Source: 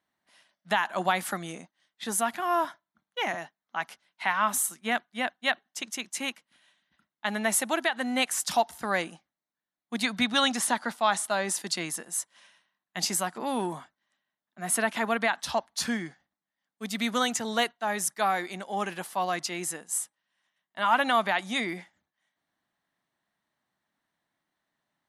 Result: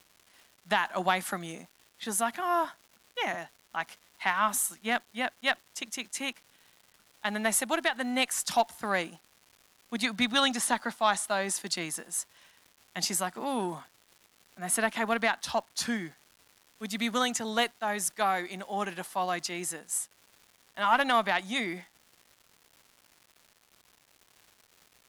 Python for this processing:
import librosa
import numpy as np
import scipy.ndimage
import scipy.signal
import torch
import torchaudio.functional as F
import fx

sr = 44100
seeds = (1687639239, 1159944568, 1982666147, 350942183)

y = fx.dmg_crackle(x, sr, seeds[0], per_s=420.0, level_db=-44.0)
y = fx.cheby_harmonics(y, sr, harmonics=(2, 3), levels_db=(-30, -24), full_scale_db=-11.0)